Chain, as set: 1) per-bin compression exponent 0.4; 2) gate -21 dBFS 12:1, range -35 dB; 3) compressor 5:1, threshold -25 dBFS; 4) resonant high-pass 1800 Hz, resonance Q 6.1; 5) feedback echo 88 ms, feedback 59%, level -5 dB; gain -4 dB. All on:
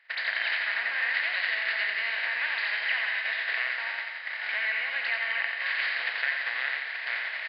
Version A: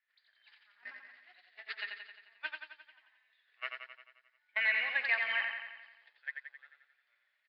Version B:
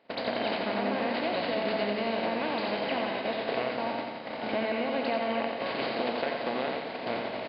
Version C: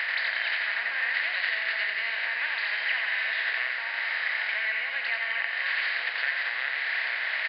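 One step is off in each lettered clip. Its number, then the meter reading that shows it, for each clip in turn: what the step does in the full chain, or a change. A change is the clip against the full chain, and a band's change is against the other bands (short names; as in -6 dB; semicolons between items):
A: 1, 500 Hz band +2.5 dB; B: 4, 500 Hz band +21.0 dB; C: 2, momentary loudness spread change -2 LU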